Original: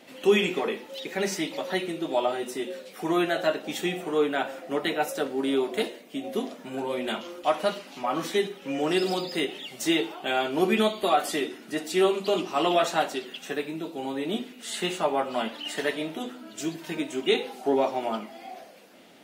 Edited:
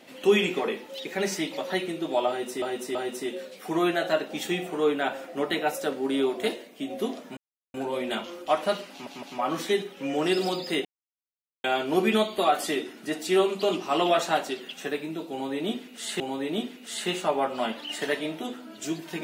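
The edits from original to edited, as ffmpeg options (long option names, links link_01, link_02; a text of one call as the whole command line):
ffmpeg -i in.wav -filter_complex "[0:a]asplit=9[link_01][link_02][link_03][link_04][link_05][link_06][link_07][link_08][link_09];[link_01]atrim=end=2.622[link_10];[link_02]atrim=start=2.288:end=2.622[link_11];[link_03]atrim=start=2.288:end=6.71,asetpts=PTS-STARTPTS,afade=type=out:start_time=4.418:duration=0.004:curve=hsin,apad=pad_dur=0.37[link_12];[link_04]atrim=start=6.71:end=8.042,asetpts=PTS-STARTPTS,afade=type=in:duration=0.004:curve=hsin[link_13];[link_05]atrim=start=7.878:end=8.042[link_14];[link_06]atrim=start=7.878:end=9.5,asetpts=PTS-STARTPTS,afade=type=out:start_time=1.618:duration=0.004:curve=hsin[link_15];[link_07]atrim=start=9.5:end=10.29,asetpts=PTS-STARTPTS,volume=0[link_16];[link_08]atrim=start=10.29:end=14.852,asetpts=PTS-STARTPTS,afade=type=in:duration=0.004:curve=hsin[link_17];[link_09]atrim=start=13.958[link_18];[link_10][link_11]acrossfade=duration=0.004:curve1=hsin:curve2=hsin[link_19];[link_12][link_13]concat=n=2:v=0:a=1[link_20];[link_19][link_20]acrossfade=duration=0.004:curve1=hsin:curve2=hsin[link_21];[link_21][link_14]acrossfade=duration=0.004:curve1=hsin:curve2=hsin[link_22];[link_15][link_16][link_17]concat=n=3:v=0:a=1[link_23];[link_22][link_23]acrossfade=duration=0.004:curve1=hsin:curve2=hsin[link_24];[link_24][link_18]acrossfade=duration=0.004:curve1=hsin:curve2=hsin" out.wav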